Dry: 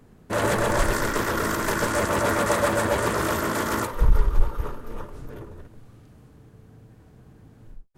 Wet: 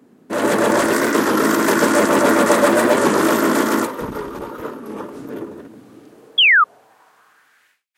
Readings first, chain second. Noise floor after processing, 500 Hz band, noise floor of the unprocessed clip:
−57 dBFS, +8.5 dB, −53 dBFS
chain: automatic gain control gain up to 8 dB
high-pass filter sweep 260 Hz → 2,200 Hz, 0:05.84–0:07.81
sound drawn into the spectrogram fall, 0:06.38–0:06.65, 1,200–3,300 Hz −11 dBFS
wow of a warped record 33 1/3 rpm, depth 100 cents

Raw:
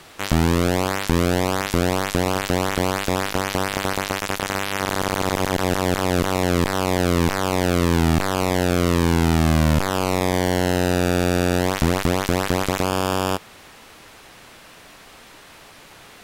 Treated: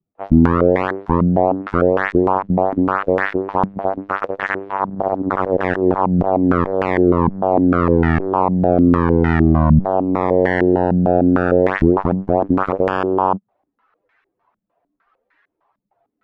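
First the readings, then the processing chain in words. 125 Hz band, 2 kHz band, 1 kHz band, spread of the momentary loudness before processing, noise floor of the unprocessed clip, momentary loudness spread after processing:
+2.5 dB, +0.5 dB, +5.0 dB, 5 LU, −46 dBFS, 7 LU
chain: spectral dynamics exaggerated over time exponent 2
low-pass on a step sequencer 6.6 Hz 200–1,800 Hz
level +4 dB

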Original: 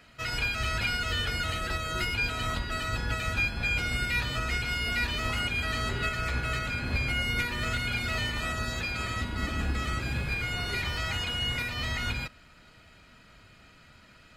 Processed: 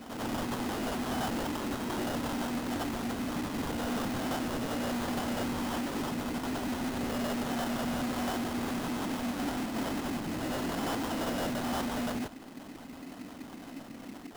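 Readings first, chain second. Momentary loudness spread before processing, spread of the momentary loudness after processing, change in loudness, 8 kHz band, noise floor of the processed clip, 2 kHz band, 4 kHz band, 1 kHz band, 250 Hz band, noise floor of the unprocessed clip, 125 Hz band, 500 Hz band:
4 LU, 12 LU, −4.0 dB, −0.5 dB, −47 dBFS, −11.0 dB, −9.0 dB, 0.0 dB, +8.0 dB, −56 dBFS, −8.5 dB, +4.0 dB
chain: high-shelf EQ 7,000 Hz +11.5 dB
in parallel at +3 dB: downward compressor, threshold −40 dBFS, peak gain reduction 16 dB
on the sum: bit-depth reduction 8 bits, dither none
hollow resonant body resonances 260/3,000 Hz, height 18 dB, ringing for 25 ms
auto-filter band-pass square 5.8 Hz 280–4,400 Hz
sample-rate reduction 2,300 Hz, jitter 20%
hard clipping −32 dBFS, distortion −5 dB
backwards echo 91 ms −4.5 dB

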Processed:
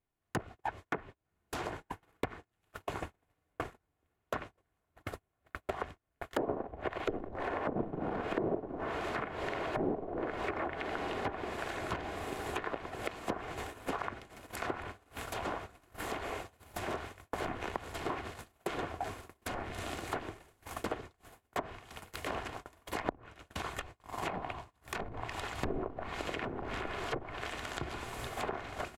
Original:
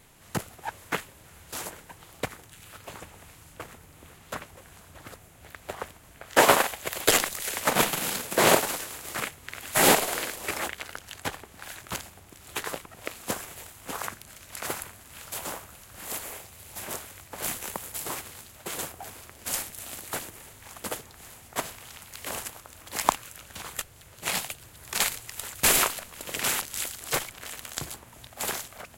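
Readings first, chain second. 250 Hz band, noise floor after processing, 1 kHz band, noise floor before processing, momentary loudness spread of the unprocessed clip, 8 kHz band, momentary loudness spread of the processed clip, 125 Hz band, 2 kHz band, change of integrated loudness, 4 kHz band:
−3.0 dB, −82 dBFS, −7.0 dB, −53 dBFS, 22 LU, −23.0 dB, 10 LU, −2.5 dB, −10.0 dB, −11.0 dB, −15.0 dB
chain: on a send: feedback delay with all-pass diffusion 1,234 ms, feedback 58%, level −15.5 dB
on the sum: noise gate −42 dBFS, range −41 dB
comb filter 2.8 ms, depth 32%
in parallel at −5 dB: soft clipping −14.5 dBFS, distortion −13 dB
on the sum: treble cut that deepens with the level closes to 420 Hz, closed at −19 dBFS
downward compressor 4 to 1, threshold −41 dBFS, peak gain reduction 21 dB
parametric band 8,000 Hz −12.5 dB 2.8 octaves
level +7.5 dB

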